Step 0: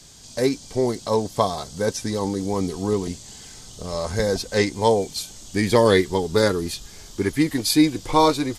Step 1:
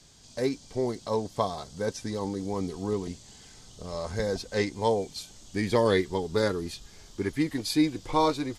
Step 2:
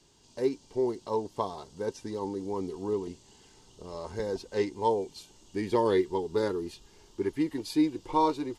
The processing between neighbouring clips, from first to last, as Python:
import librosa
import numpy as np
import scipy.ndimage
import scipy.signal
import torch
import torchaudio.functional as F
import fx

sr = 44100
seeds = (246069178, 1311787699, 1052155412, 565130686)

y1 = fx.high_shelf(x, sr, hz=8900.0, db=-10.5)
y1 = F.gain(torch.from_numpy(y1), -7.0).numpy()
y2 = fx.small_body(y1, sr, hz=(370.0, 910.0, 2800.0), ring_ms=20, db=11)
y2 = F.gain(torch.from_numpy(y2), -8.5).numpy()